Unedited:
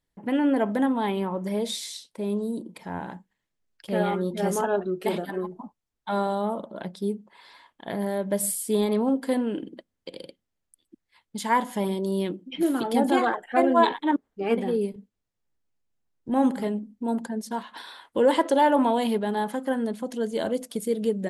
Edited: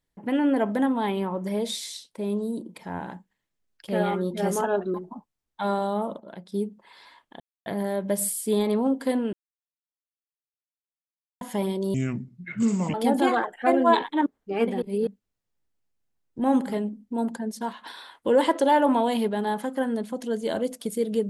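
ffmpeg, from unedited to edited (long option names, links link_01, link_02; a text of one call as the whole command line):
ffmpeg -i in.wav -filter_complex "[0:a]asplit=11[link_01][link_02][link_03][link_04][link_05][link_06][link_07][link_08][link_09][link_10][link_11];[link_01]atrim=end=4.942[link_12];[link_02]atrim=start=5.418:end=6.682[link_13];[link_03]atrim=start=6.678:end=7.002,asetpts=PTS-STARTPTS,volume=-6.5dB[link_14];[link_04]atrim=start=6.998:end=7.88,asetpts=PTS-STARTPTS,afade=type=out:start_time=0.878:duration=0.004:curve=hsin,apad=pad_dur=0.26[link_15];[link_05]atrim=start=7.88:end=9.55,asetpts=PTS-STARTPTS,afade=type=in:duration=0.004:curve=hsin,afade=type=out:start_time=1.666:duration=0.004:curve=hsin[link_16];[link_06]atrim=start=9.55:end=11.63,asetpts=PTS-STARTPTS,volume=0[link_17];[link_07]atrim=start=11.63:end=12.164,asetpts=PTS-STARTPTS,afade=type=in:duration=0.004:curve=hsin[link_18];[link_08]atrim=start=12.16:end=12.84,asetpts=PTS-STARTPTS,asetrate=29988,aresample=44100[link_19];[link_09]atrim=start=12.836:end=14.722[link_20];[link_10]atrim=start=14.718:end=14.972,asetpts=PTS-STARTPTS,areverse[link_21];[link_11]atrim=start=14.968[link_22];[link_12][link_13]acrossfade=duration=0.004:curve1=hsin:curve2=hsin[link_23];[link_23][link_14]acrossfade=duration=0.004:curve1=hsin:curve2=hsin[link_24];[link_15][link_16][link_17][link_18]concat=n=4:v=0:a=1[link_25];[link_24][link_25]acrossfade=duration=0.004:curve1=hsin:curve2=hsin[link_26];[link_26][link_19]acrossfade=duration=0.004:curve1=hsin:curve2=hsin[link_27];[link_27][link_20]acrossfade=duration=0.004:curve1=hsin:curve2=hsin[link_28];[link_28][link_21]acrossfade=duration=0.004:curve1=hsin:curve2=hsin[link_29];[link_29][link_22]acrossfade=duration=0.004:curve1=hsin:curve2=hsin" out.wav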